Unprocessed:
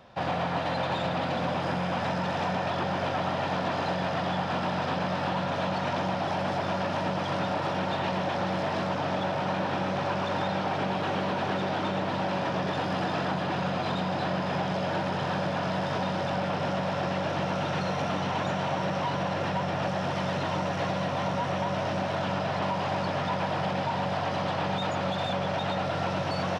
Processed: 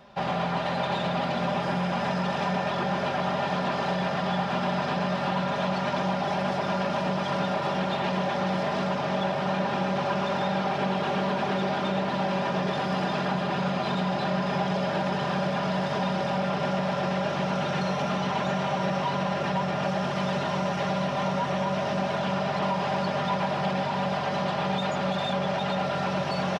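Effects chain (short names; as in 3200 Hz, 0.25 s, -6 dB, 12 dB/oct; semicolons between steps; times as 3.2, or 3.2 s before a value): comb 5 ms, depth 65%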